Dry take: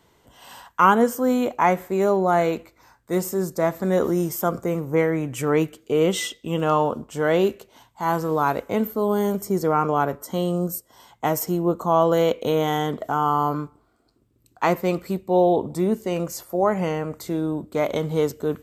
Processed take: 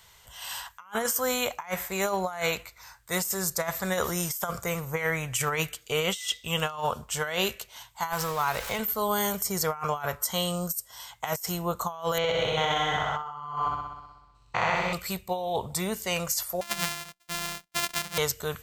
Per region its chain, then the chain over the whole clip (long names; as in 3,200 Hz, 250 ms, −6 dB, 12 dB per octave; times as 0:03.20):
0:08.12–0:08.79: converter with a step at zero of −35 dBFS + high-shelf EQ 11,000 Hz −4 dB + downward compressor, threshold −21 dBFS
0:12.18–0:14.93: spectrum averaged block by block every 200 ms + high-frequency loss of the air 150 metres + flutter between parallel walls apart 10.7 metres, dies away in 1.1 s
0:16.61–0:18.18: samples sorted by size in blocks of 128 samples + low shelf with overshoot 140 Hz −8.5 dB, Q 3 + expander for the loud parts 2.5 to 1, over −40 dBFS
whole clip: guitar amp tone stack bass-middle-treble 10-0-10; compressor whose output falls as the input rises −36 dBFS, ratio −0.5; level +8.5 dB